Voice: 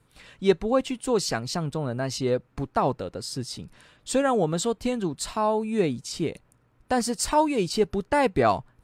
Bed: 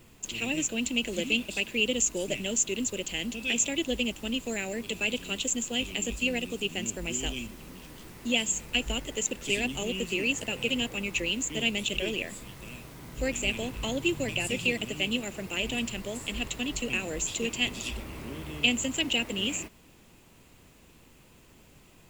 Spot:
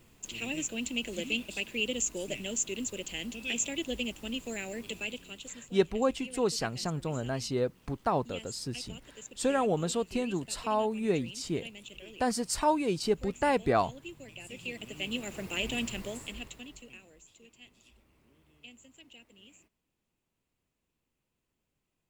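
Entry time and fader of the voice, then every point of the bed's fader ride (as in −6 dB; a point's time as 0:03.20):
5.30 s, −5.0 dB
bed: 0:04.90 −5 dB
0:05.62 −17.5 dB
0:14.31 −17.5 dB
0:15.36 −2 dB
0:16.05 −2 dB
0:17.24 −27 dB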